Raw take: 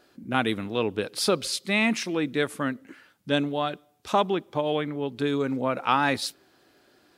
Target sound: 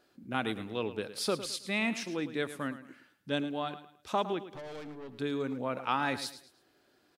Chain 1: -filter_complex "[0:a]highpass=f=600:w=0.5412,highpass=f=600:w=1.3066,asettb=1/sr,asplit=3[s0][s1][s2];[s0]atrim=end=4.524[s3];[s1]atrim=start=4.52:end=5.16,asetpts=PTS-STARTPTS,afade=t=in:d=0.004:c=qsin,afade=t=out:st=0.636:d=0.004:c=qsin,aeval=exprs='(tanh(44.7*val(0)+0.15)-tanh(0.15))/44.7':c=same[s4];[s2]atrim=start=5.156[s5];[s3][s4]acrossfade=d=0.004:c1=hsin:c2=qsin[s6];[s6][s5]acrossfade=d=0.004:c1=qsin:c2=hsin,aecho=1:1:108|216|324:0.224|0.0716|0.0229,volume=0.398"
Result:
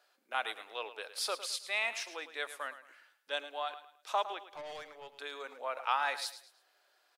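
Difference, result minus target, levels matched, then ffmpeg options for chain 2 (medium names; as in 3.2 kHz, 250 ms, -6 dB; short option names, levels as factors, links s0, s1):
500 Hz band -4.0 dB
-filter_complex "[0:a]asettb=1/sr,asplit=3[s0][s1][s2];[s0]atrim=end=4.524[s3];[s1]atrim=start=4.52:end=5.16,asetpts=PTS-STARTPTS,afade=t=in:d=0.004:c=qsin,afade=t=out:st=0.636:d=0.004:c=qsin,aeval=exprs='(tanh(44.7*val(0)+0.15)-tanh(0.15))/44.7':c=same[s4];[s2]atrim=start=5.156[s5];[s3][s4]acrossfade=d=0.004:c1=hsin:c2=qsin[s6];[s6][s5]acrossfade=d=0.004:c1=qsin:c2=hsin,aecho=1:1:108|216|324:0.224|0.0716|0.0229,volume=0.398"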